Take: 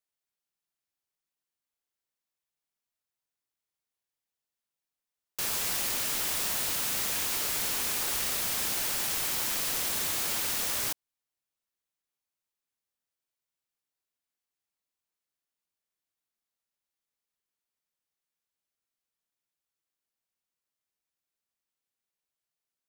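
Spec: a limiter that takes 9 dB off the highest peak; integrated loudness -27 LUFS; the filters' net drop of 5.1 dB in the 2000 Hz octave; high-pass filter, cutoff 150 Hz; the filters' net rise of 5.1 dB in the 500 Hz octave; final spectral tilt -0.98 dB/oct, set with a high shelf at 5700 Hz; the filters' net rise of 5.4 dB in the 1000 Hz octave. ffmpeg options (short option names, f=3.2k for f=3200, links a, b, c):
-af "highpass=150,equalizer=f=500:t=o:g=4.5,equalizer=f=1k:t=o:g=8,equalizer=f=2k:t=o:g=-8.5,highshelf=f=5.7k:g=-7,volume=10.5dB,alimiter=limit=-19.5dB:level=0:latency=1"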